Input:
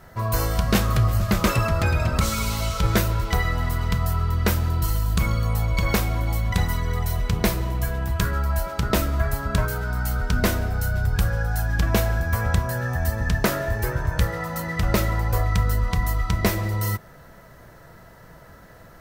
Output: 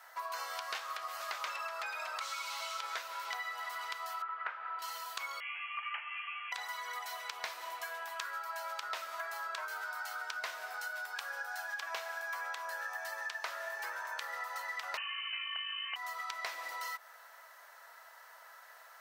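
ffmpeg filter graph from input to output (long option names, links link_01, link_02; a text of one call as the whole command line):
ffmpeg -i in.wav -filter_complex "[0:a]asettb=1/sr,asplit=3[link_01][link_02][link_03];[link_01]atrim=end=4.224[link_04];[link_02]atrim=start=4.22:end=4.79,asetpts=PTS-STARTPTS,afade=type=in:duration=0.004:curve=qsin,afade=type=out:start_time=0.566:duration=0.004:curve=qsin,lowpass=frequency=2500:width=0.5412,lowpass=frequency=2500:width=1.3066,equalizer=frequency=1400:width_type=o:width=0.58:gain=8.5[link_05];[link_03]atrim=start=4.786[link_06];[link_04][link_05]acrossfade=duration=0.004:curve1=hsin:curve2=qsin[link_07];[link_07][link_06]acrossfade=duration=0.004:curve1=qsin:curve2=hsin,asettb=1/sr,asplit=3[link_08][link_09][link_10];[link_08]atrim=end=5.404[link_11];[link_09]atrim=start=5.4:end=6.52,asetpts=PTS-STARTPTS,afade=type=in:duration=0.004:curve=qsin,afade=type=out:start_time=1.116:duration=0.004:curve=qsin,highpass=780,lowpass=frequency=2900:width_type=q:width=0.5098,lowpass=frequency=2900:width_type=q:width=0.6013,lowpass=frequency=2900:width_type=q:width=0.9,lowpass=frequency=2900:width_type=q:width=2.563,afreqshift=-3400[link_12];[link_10]atrim=start=6.516[link_13];[link_11][link_12]acrossfade=duration=0.004:curve1=hsin:curve2=qsin[link_14];[link_14][link_13]acrossfade=duration=0.004:curve1=qsin:curve2=hsin,asettb=1/sr,asplit=3[link_15][link_16][link_17];[link_15]atrim=end=14.974[link_18];[link_16]atrim=start=14.97:end=15.96,asetpts=PTS-STARTPTS,afade=type=in:duration=0.004:curve=qsin,afade=type=out:start_time=0.986:duration=0.004:curve=qsin,highpass=frequency=210:poles=1,lowpass=frequency=2600:width_type=q:width=0.5098,lowpass=frequency=2600:width_type=q:width=0.6013,lowpass=frequency=2600:width_type=q:width=0.9,lowpass=frequency=2600:width_type=q:width=2.563,afreqshift=-3100[link_19];[link_17]atrim=start=15.956[link_20];[link_18][link_19]acrossfade=duration=0.004:curve1=hsin:curve2=qsin[link_21];[link_21][link_20]acrossfade=duration=0.004:curve1=qsin:curve2=hsin,acrossover=split=6100[link_22][link_23];[link_23]acompressor=threshold=-46dB:ratio=4:attack=1:release=60[link_24];[link_22][link_24]amix=inputs=2:normalize=0,highpass=frequency=810:width=0.5412,highpass=frequency=810:width=1.3066,acompressor=threshold=-34dB:ratio=6,volume=-3dB" out.wav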